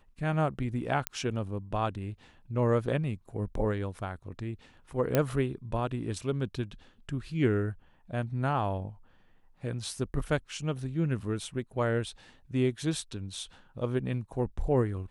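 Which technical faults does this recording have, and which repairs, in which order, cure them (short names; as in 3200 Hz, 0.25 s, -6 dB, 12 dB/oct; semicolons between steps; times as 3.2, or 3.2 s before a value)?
1.07 pop -11 dBFS
5.15 pop -11 dBFS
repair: de-click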